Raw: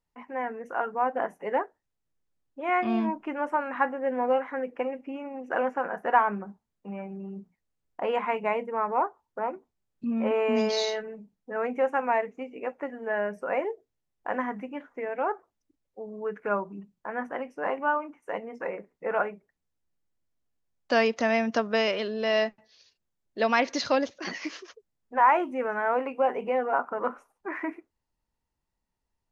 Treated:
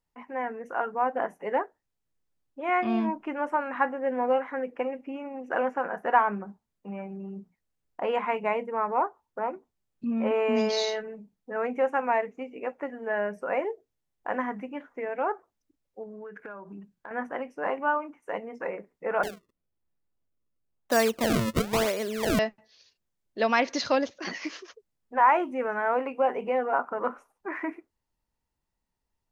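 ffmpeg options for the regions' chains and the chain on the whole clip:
-filter_complex "[0:a]asettb=1/sr,asplit=3[s0][s1][s2];[s0]atrim=end=16.034[s3];[s1]atrim=start=16.03:end=17.11,asetpts=PTS-STARTPTS,afade=t=in:d=0.004:c=qsin,afade=t=out:st=1.076:d=0.004:c=qsin,equalizer=f=1600:t=o:w=0.2:g=10.5,acompressor=threshold=0.0126:ratio=8:attack=3.2:release=140:knee=1:detection=peak[s4];[s2]atrim=start=17.106[s5];[s3][s4]acrossfade=d=0.004:c1=hsin:c2=qsin[s6];[s6][s5]acrossfade=d=0.004:c1=qsin:c2=hsin,asettb=1/sr,asplit=3[s7][s8][s9];[s7]atrim=end=19.234[s10];[s8]atrim=start=19.23:end=22.39,asetpts=PTS-STARTPTS,afade=t=in:d=0.004:c=qsin,afade=t=out:st=3.156:d=0.004:c=qsin,lowpass=f=2500:w=0.5412,lowpass=f=2500:w=1.3066,acrusher=samples=32:mix=1:aa=0.000001:lfo=1:lforange=51.2:lforate=1[s11];[s9]atrim=start=22.386[s12];[s10][s11]acrossfade=d=0.004:c1=hsin:c2=qsin[s13];[s13][s12]acrossfade=d=0.004:c1=qsin:c2=hsin"

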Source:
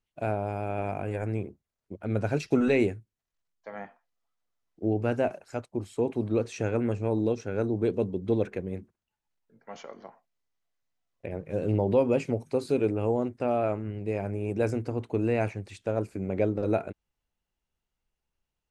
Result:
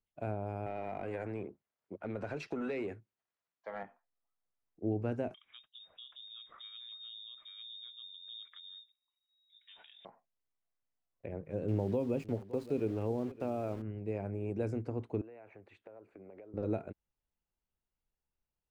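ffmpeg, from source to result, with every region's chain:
-filter_complex "[0:a]asettb=1/sr,asplit=3[s0][s1][s2];[s0]atrim=end=0.664[s3];[s1]atrim=start=0.66:end=3.83,asetpts=PTS-STARTPTS,afade=t=in:d=0.004:c=qsin,afade=t=out:st=3.166:d=0.004:c=qsin,highpass=92,acompressor=threshold=0.0398:ratio=6:attack=3.2:release=140:knee=1:detection=peak,asplit=2[s4][s5];[s5]highpass=f=720:p=1,volume=5.01,asoftclip=type=tanh:threshold=0.112[s6];[s4][s6]amix=inputs=2:normalize=0,lowpass=f=3700:p=1,volume=0.501[s7];[s2]atrim=start=3.826[s8];[s3][s7]acrossfade=d=0.004:c1=hsin:c2=qsin[s9];[s9][s8]acrossfade=d=0.004:c1=qsin:c2=hsin,asettb=1/sr,asplit=3[s10][s11][s12];[s10]atrim=end=5.344[s13];[s11]atrim=start=5.34:end=10.05,asetpts=PTS-STARTPTS,afade=t=in:d=0.004:c=qsin,afade=t=out:st=4.706:d=0.004:c=qsin,asubboost=boost=8.5:cutoff=180,acompressor=threshold=0.00794:ratio=2.5:attack=3.2:release=140:knee=1:detection=peak,lowpass=f=3200:t=q:w=0.5098,lowpass=f=3200:t=q:w=0.6013,lowpass=f=3200:t=q:w=0.9,lowpass=f=3200:t=q:w=2.563,afreqshift=-3800[s14];[s12]atrim=start=10.046[s15];[s13][s14]acrossfade=d=0.004:c1=hsin:c2=qsin[s16];[s16][s15]acrossfade=d=0.004:c1=qsin:c2=hsin,asettb=1/sr,asplit=3[s17][s18][s19];[s17]atrim=end=11.684[s20];[s18]atrim=start=11.68:end=13.82,asetpts=PTS-STARTPTS,afade=t=in:d=0.004:c=qsin,afade=t=out:st=2.136:d=0.004:c=qsin,aeval=exprs='val(0)*gte(abs(val(0)),0.0106)':c=same,aecho=1:1:564:0.112,atrim=end_sample=94374[s21];[s19]atrim=start=13.816[s22];[s20][s21]acrossfade=d=0.004:c1=hsin:c2=qsin[s23];[s23][s22]acrossfade=d=0.004:c1=qsin:c2=hsin,asettb=1/sr,asplit=3[s24][s25][s26];[s24]atrim=end=15.214[s27];[s25]atrim=start=15.21:end=16.54,asetpts=PTS-STARTPTS,afade=t=in:d=0.004:c=qsin,afade=t=out:st=1.326:d=0.004:c=qsin,acrossover=split=320 3100:gain=0.158 1 0.1[s28][s29][s30];[s28][s29][s30]amix=inputs=3:normalize=0,bandreject=f=5200:w=9.2,acompressor=threshold=0.00891:ratio=20:attack=3.2:release=140:knee=1:detection=peak[s31];[s26]atrim=start=16.536[s32];[s27][s31]acrossfade=d=0.004:c1=hsin:c2=qsin[s33];[s33][s32]acrossfade=d=0.004:c1=qsin:c2=hsin,highshelf=f=3000:g=-11,acrossover=split=380|3000[s34][s35][s36];[s35]acompressor=threshold=0.0282:ratio=6[s37];[s34][s37][s36]amix=inputs=3:normalize=0,volume=0.501"

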